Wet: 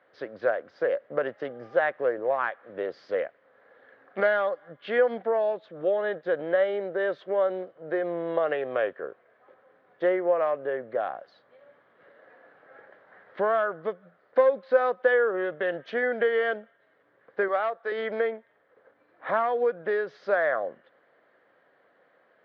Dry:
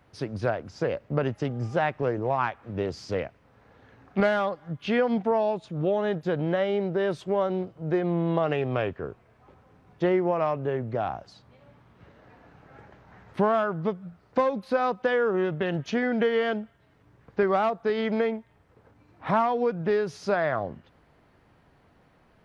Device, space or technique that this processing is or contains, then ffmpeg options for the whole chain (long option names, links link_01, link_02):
phone earpiece: -filter_complex "[0:a]asettb=1/sr,asplit=3[link_01][link_02][link_03];[link_01]atrim=end=17.484[link_04];[link_02]atrim=start=17.48:end=17.92,asetpts=PTS-STARTPTS,afade=type=in:duration=0.004:curve=qsin,afade=type=out:start_time=0.436:duration=0.004:curve=qsin,highpass=frequency=580:poles=1[link_05];[link_03]atrim=start=17.916[link_06];[link_04][link_05]acrossfade=duration=0.004:curve1=hsin:curve2=qsin[link_07];[link_07][link_06]acrossfade=duration=0.004:curve1=qsin:curve2=hsin,highpass=480,equalizer=frequency=530:width_type=q:width=4:gain=8,equalizer=frequency=900:width_type=q:width=4:gain=-7,equalizer=frequency=1700:width_type=q:width=4:gain=6,equalizer=frequency=2600:width_type=q:width=4:gain=-9,lowpass=frequency=3400:width=0.5412,lowpass=frequency=3400:width=1.3066"